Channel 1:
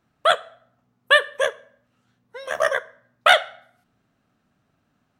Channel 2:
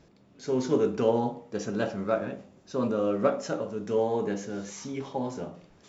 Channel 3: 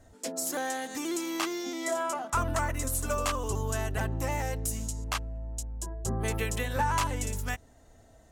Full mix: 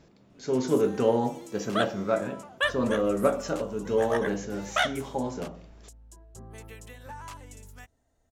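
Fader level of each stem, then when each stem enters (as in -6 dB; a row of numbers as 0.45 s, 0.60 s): -11.0 dB, +1.0 dB, -14.5 dB; 1.50 s, 0.00 s, 0.30 s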